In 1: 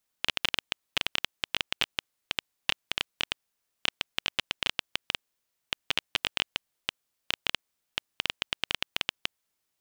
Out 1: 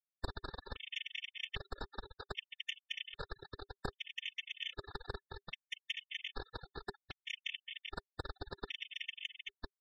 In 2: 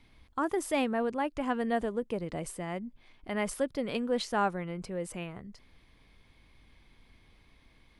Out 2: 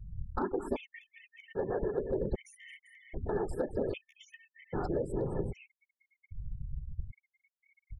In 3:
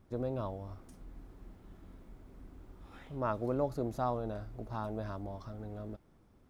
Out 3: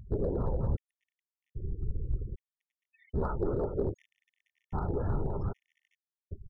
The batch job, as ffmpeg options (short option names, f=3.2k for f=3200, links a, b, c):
-filter_complex "[0:a]aecho=1:1:2.3:0.66,asplit=2[a][b];[b]aecho=0:1:41|218|388:0.126|0.299|0.224[c];[a][c]amix=inputs=2:normalize=0,acompressor=threshold=-38dB:ratio=8,afftfilt=real='hypot(re,im)*cos(2*PI*random(0))':imag='hypot(re,im)*sin(2*PI*random(1))':win_size=512:overlap=0.75,afftfilt=real='re*gte(hypot(re,im),0.002)':imag='im*gte(hypot(re,im),0.002)':win_size=1024:overlap=0.75,aemphasis=mode=reproduction:type=bsi,asplit=2[d][e];[e]aeval=exprs='0.0188*(abs(mod(val(0)/0.0188+3,4)-2)-1)':c=same,volume=-4.5dB[f];[d][f]amix=inputs=2:normalize=0,equalizer=f=400:w=7.4:g=7.5,afftfilt=real='re*gt(sin(2*PI*0.63*pts/sr)*(1-2*mod(floor(b*sr/1024/1800),2)),0)':imag='im*gt(sin(2*PI*0.63*pts/sr)*(1-2*mod(floor(b*sr/1024/1800),2)),0)':win_size=1024:overlap=0.75,volume=6.5dB"